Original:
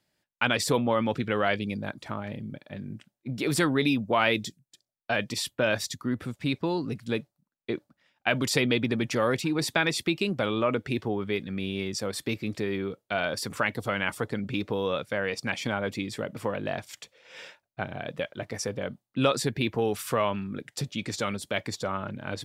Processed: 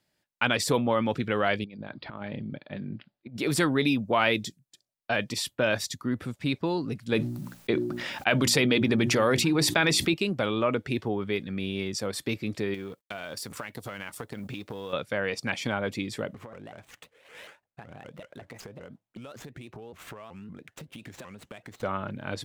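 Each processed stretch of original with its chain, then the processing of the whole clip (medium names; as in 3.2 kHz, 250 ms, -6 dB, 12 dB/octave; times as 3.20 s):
1.64–3.37 s: steep low-pass 4.9 kHz 96 dB/octave + peaking EQ 98 Hz -7.5 dB 0.22 oct + compressor with a negative ratio -37 dBFS, ratio -0.5
7.12–10.14 s: hum notches 60/120/180/240/300/360 Hz + level flattener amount 70%
12.74–14.93 s: companding laws mixed up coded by A + treble shelf 5.7 kHz +7 dB + compression 10:1, threshold -32 dBFS
16.34–21.83 s: median filter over 9 samples + compression 16:1, threshold -39 dBFS + vibrato with a chosen wave saw up 5.3 Hz, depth 250 cents
whole clip: none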